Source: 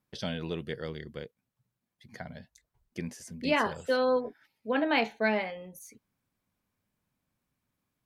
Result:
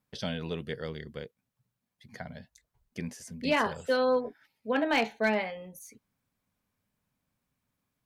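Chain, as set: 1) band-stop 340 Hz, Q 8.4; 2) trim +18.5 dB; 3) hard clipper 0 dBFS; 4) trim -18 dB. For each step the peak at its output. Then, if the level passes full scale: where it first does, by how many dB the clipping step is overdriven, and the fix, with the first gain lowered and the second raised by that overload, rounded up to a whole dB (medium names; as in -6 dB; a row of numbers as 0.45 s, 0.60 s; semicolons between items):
-13.5 dBFS, +5.0 dBFS, 0.0 dBFS, -18.0 dBFS; step 2, 5.0 dB; step 2 +13.5 dB, step 4 -13 dB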